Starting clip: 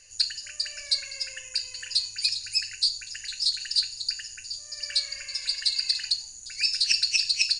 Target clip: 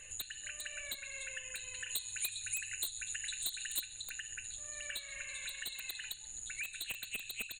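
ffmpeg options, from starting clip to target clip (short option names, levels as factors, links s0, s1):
-filter_complex "[0:a]aecho=1:1:129|258|387:0.106|0.0455|0.0196,aeval=exprs='0.168*(abs(mod(val(0)/0.168+3,4)-2)-1)':c=same,asuperstop=centerf=5200:order=12:qfactor=1.9,acompressor=threshold=0.00447:ratio=4,asettb=1/sr,asplit=3[s0][s1][s2];[s0]atrim=end=1.894[s3];[s1]atrim=start=1.89:end=3.86,asetpts=PTS-STARTPTS,afade=t=in:d=0.004:c=qsin,afade=t=out:st=1.966:d=0.004:c=qsin,highshelf=f=6800:g=9.5[s4];[s2]atrim=start=3.856[s5];[s3][s4]acrossfade=d=0.004:c1=hsin:c2=qsin[s6];[s6][s5]acrossfade=d=0.004:c1=qsin:c2=hsin,volume=1.78"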